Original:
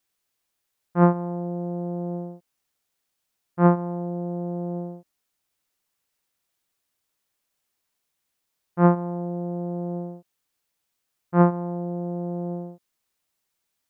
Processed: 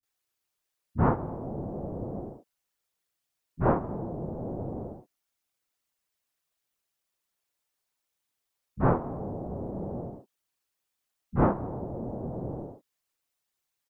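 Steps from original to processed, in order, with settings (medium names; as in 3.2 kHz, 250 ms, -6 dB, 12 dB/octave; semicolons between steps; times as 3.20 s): whisper effect; bands offset in time lows, highs 30 ms, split 210 Hz; trim -4.5 dB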